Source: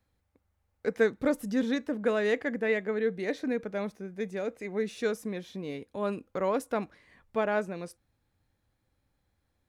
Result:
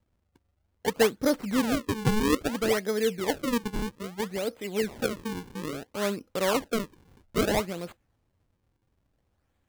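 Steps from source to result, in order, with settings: 5.06–5.62 s: high-order bell 640 Hz -15 dB 1.3 oct; decimation with a swept rate 39×, swing 160% 0.6 Hz; trim +2.5 dB

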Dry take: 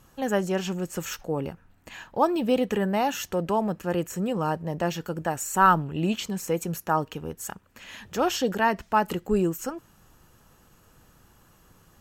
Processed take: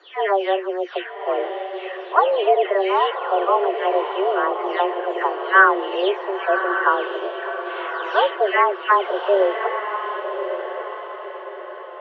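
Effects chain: delay that grows with frequency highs early, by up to 343 ms; mistuned SSB +190 Hz 180–3100 Hz; echo that smears into a reverb 1113 ms, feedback 44%, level -7.5 dB; trim +7 dB

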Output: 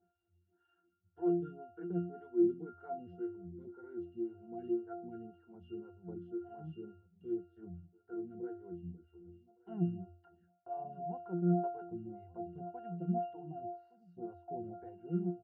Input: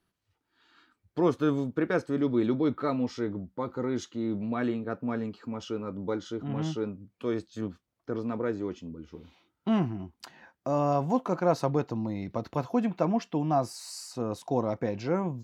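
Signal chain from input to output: low-pass 2.6 kHz; upward compressor, threshold -55 dBFS; pitch-class resonator F, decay 0.48 s; echo from a far wall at 200 m, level -21 dB; lamp-driven phase shifter 1.9 Hz; trim +7.5 dB

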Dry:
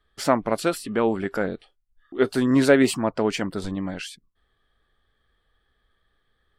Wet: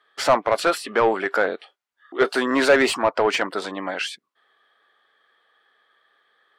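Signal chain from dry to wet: Bessel high-pass 510 Hz, order 2; overdrive pedal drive 20 dB, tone 1.8 kHz, clips at -4.5 dBFS

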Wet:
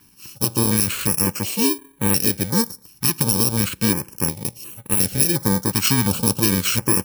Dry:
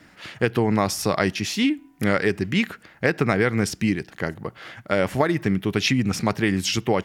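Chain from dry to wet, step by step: bit-reversed sample order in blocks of 64 samples; level rider; vibrato 13 Hz 24 cents; step-sequenced notch 2.8 Hz 540–5200 Hz; trim -1 dB

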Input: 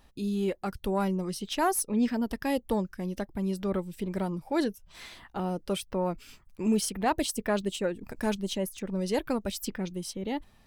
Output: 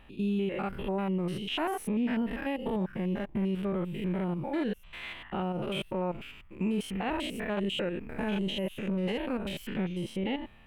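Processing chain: spectrogram pixelated in time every 100 ms; peak limiter -28 dBFS, peak gain reduction 11.5 dB; resonant high shelf 3.8 kHz -11 dB, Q 3; trim +5 dB

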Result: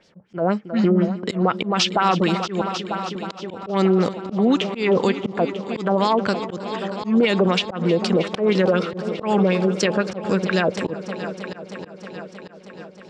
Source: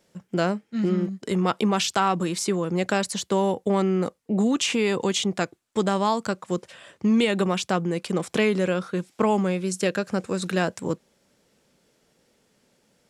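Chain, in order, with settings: LFO low-pass sine 4 Hz 520–5500 Hz; 2.61–3.51 s: inverted gate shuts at -19 dBFS, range -27 dB; on a send: multi-head delay 315 ms, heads all three, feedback 57%, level -18 dB; on the sum: peak limiter -15 dBFS, peak gain reduction 8.5 dB; slow attack 141 ms; trim +6 dB

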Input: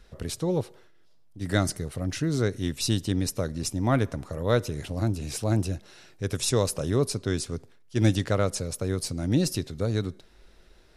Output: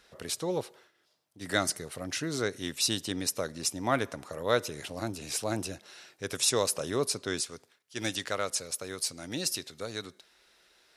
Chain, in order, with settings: high-pass 720 Hz 6 dB/octave, from 7.41 s 1.5 kHz; trim +2 dB

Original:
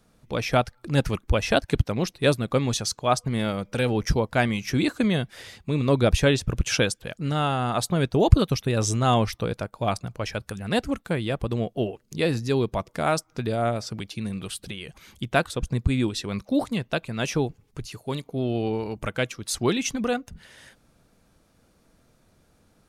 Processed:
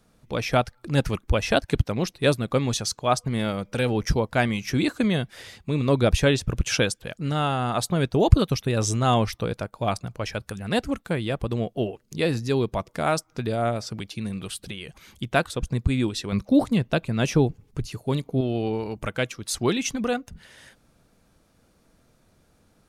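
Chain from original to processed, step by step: 16.32–18.41 s: bass shelf 460 Hz +7 dB

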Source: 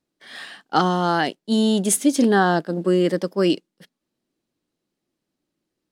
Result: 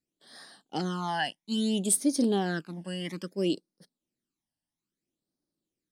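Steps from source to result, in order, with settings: 1.08–3.30 s: peaking EQ 2.4 kHz +10 dB 0.5 oct; phase shifter stages 12, 0.6 Hz, lowest notch 390–2700 Hz; peaking EQ 8.4 kHz +7 dB 1.5 oct; trim -9 dB

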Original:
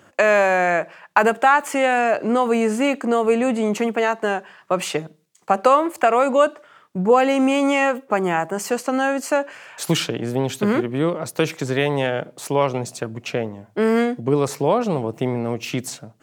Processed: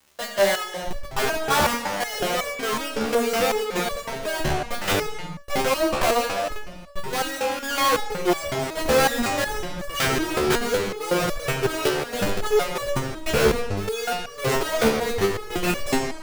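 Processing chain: high-order bell 820 Hz +11 dB 2.7 oct; expander -29 dBFS; in parallel at -0.5 dB: compressor with a negative ratio -9 dBFS, ratio -0.5; on the sum: Schmitt trigger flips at -20 dBFS; trance gate "xx.xx..xx" 120 bpm -12 dB; crackle 270 per s -28 dBFS; on a send at -5 dB: reverberation, pre-delay 54 ms; on the sum: resonator arpeggio 5.4 Hz 74–570 Hz; trim -4 dB

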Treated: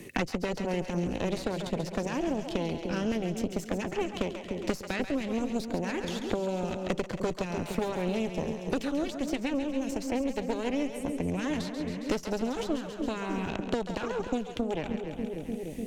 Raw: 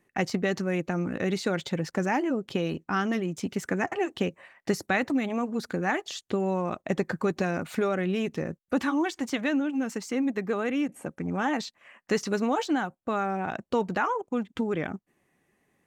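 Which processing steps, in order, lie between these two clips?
high-order bell 1.1 kHz -11.5 dB; Chebyshev shaper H 6 -10 dB, 8 -24 dB, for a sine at -13.5 dBFS; two-band feedback delay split 530 Hz, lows 297 ms, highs 136 ms, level -9 dB; three bands compressed up and down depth 100%; trim -4.5 dB

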